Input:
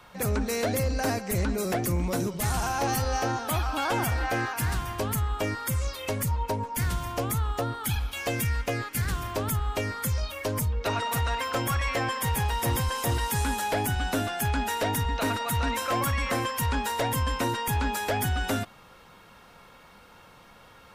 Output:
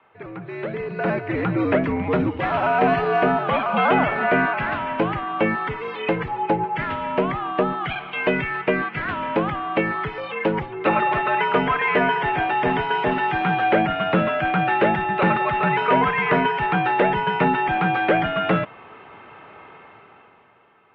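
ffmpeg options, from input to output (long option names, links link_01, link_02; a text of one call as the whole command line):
ffmpeg -i in.wav -af "dynaudnorm=framelen=100:gausssize=21:maxgain=15dB,highpass=frequency=240:width_type=q:width=0.5412,highpass=frequency=240:width_type=q:width=1.307,lowpass=frequency=2900:width_type=q:width=0.5176,lowpass=frequency=2900:width_type=q:width=0.7071,lowpass=frequency=2900:width_type=q:width=1.932,afreqshift=-90,volume=-4.5dB" out.wav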